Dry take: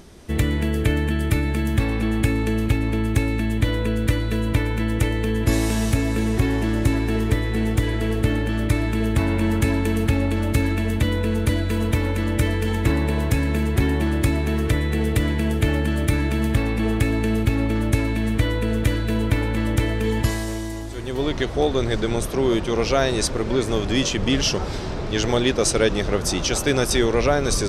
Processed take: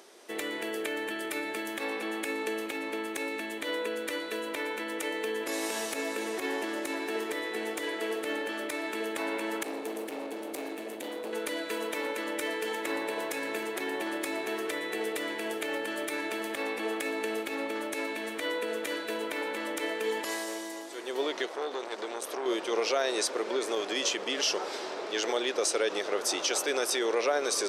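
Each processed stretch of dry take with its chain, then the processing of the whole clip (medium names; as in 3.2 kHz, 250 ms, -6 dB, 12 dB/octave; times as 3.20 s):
9.63–11.33 s: FFT filter 330 Hz 0 dB, 1.2 kHz -11 dB, 12 kHz -2 dB + hard clipper -20.5 dBFS
21.46–22.46 s: high-pass 120 Hz + compression 3:1, threshold -23 dBFS + transformer saturation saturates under 920 Hz
whole clip: peak limiter -13 dBFS; high-pass 380 Hz 24 dB/octave; trim -3.5 dB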